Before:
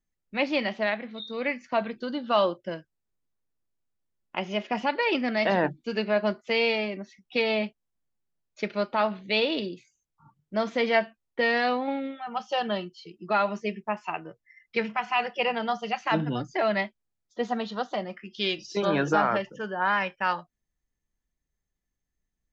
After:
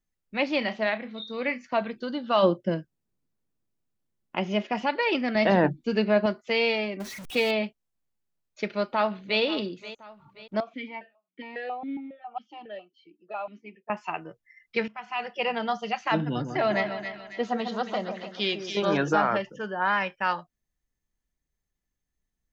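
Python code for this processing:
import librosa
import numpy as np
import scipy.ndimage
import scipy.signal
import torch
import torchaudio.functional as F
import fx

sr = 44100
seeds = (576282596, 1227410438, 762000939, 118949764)

y = fx.doubler(x, sr, ms=32.0, db=-12.5, at=(0.58, 1.66))
y = fx.peak_eq(y, sr, hz=190.0, db=fx.line((2.42, 12.5), (4.66, 5.0)), octaves=2.5, at=(2.42, 4.66), fade=0.02)
y = fx.low_shelf(y, sr, hz=410.0, db=7.5, at=(5.35, 6.26))
y = fx.zero_step(y, sr, step_db=-35.0, at=(7.0, 7.51))
y = fx.echo_throw(y, sr, start_s=8.7, length_s=0.71, ms=530, feedback_pct=45, wet_db=-15.5)
y = fx.vowel_held(y, sr, hz=7.3, at=(10.6, 13.9))
y = fx.echo_split(y, sr, split_hz=1600.0, low_ms=147, high_ms=274, feedback_pct=52, wet_db=-7.0, at=(16.21, 18.97))
y = fx.edit(y, sr, fx.fade_in_from(start_s=14.88, length_s=0.7, floor_db=-15.0), tone=tone)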